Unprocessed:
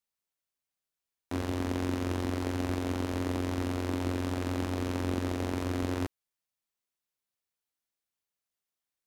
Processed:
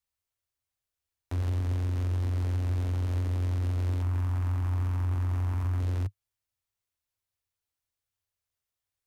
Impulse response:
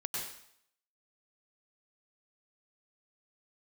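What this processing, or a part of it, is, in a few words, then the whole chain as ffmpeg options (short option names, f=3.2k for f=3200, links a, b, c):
car stereo with a boomy subwoofer: -filter_complex "[0:a]asettb=1/sr,asplit=3[a][b][c];[a]atrim=end=4.024[d];[b]atrim=start=4.02:end=5.8,asetpts=PTS-STARTPTS,afade=t=in:d=0.004:c=qsin,afade=t=out:st=1.776:d=0.004:c=qsin,equalizer=f=500:t=o:w=1:g=-9,equalizer=f=1k:t=o:w=1:g=7,equalizer=f=4k:t=o:w=1:g=-7,equalizer=f=8k:t=o:w=1:g=-3[e];[c]atrim=start=5.796[f];[d][e]acrossfade=d=0.004:c1=hsin:c2=qsin[g];[g][f]acrossfade=d=0.004:c1=qsin:c2=hsin,lowshelf=f=130:t=q:w=3:g=9,alimiter=limit=-23.5dB:level=0:latency=1:release=14"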